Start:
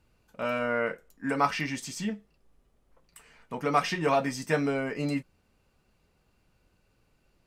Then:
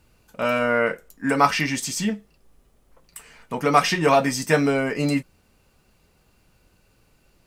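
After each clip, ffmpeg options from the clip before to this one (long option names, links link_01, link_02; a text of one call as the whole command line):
ffmpeg -i in.wav -af "highshelf=frequency=6000:gain=7,volume=7.5dB" out.wav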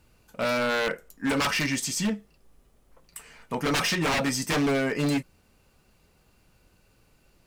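ffmpeg -i in.wav -af "aeval=exprs='0.126*(abs(mod(val(0)/0.126+3,4)-2)-1)':channel_layout=same,volume=-1.5dB" out.wav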